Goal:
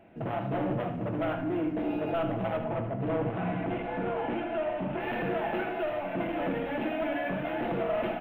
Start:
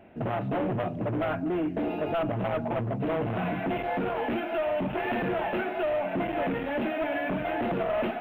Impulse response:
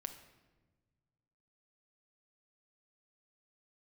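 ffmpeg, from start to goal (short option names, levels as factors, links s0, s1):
-filter_complex "[0:a]asettb=1/sr,asplit=3[s0][s1][s2];[s0]atrim=end=2.584[s3];[s1]atrim=start=2.58:end=5.01,asetpts=PTS-STARTPTS,afade=t=in:d=0.004:c=qsin,afade=t=out:st=2.426:d=0.004:c=qsin,lowpass=f=2700:p=1[s4];[s2]atrim=start=5.006[s5];[s3][s4]acrossfade=d=0.004:c1=hsin:c2=qsin[s6];[s6][s5]acrossfade=d=0.004:c1=qsin:c2=hsin,aecho=1:1:77:0.316[s7];[1:a]atrim=start_sample=2205[s8];[s7][s8]afir=irnorm=-1:irlink=0"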